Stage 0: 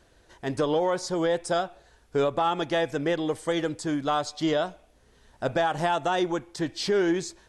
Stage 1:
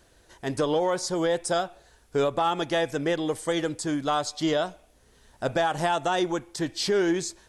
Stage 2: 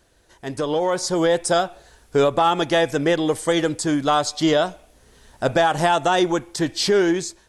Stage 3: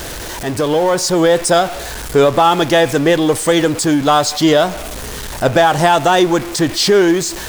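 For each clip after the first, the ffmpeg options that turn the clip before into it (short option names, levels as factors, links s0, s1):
-af "highshelf=f=7100:g=9.5"
-af "dynaudnorm=f=580:g=3:m=2.51,volume=0.891"
-af "aeval=exprs='val(0)+0.5*0.0473*sgn(val(0))':c=same,volume=1.88"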